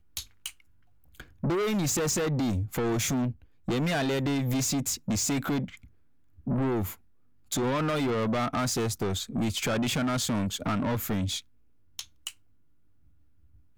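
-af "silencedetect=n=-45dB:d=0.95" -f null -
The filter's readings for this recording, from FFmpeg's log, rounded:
silence_start: 12.31
silence_end: 13.77 | silence_duration: 1.46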